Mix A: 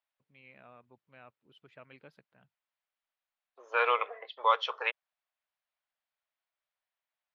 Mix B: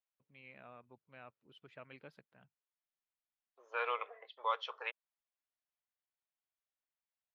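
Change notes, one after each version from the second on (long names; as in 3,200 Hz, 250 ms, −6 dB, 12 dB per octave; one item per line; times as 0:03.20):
second voice −9.5 dB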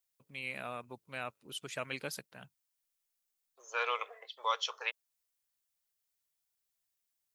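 first voice +11.5 dB
master: remove high-frequency loss of the air 400 metres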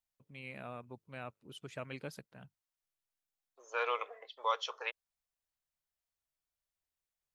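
first voice −5.0 dB
master: add spectral tilt −2.5 dB per octave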